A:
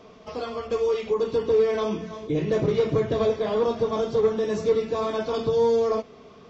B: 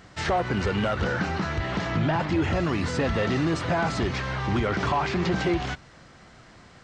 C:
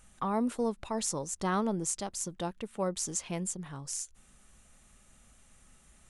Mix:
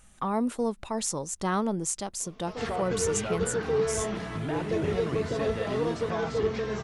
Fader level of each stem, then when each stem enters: -6.5 dB, -9.0 dB, +2.5 dB; 2.20 s, 2.40 s, 0.00 s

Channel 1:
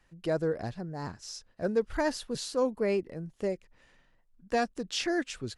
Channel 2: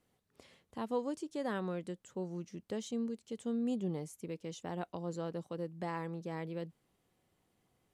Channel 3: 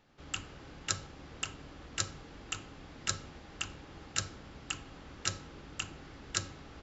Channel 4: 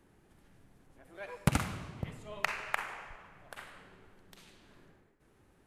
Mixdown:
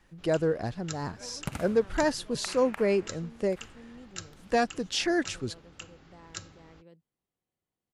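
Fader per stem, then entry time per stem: +3.0 dB, -14.5 dB, -7.0 dB, -7.5 dB; 0.00 s, 0.30 s, 0.00 s, 0.00 s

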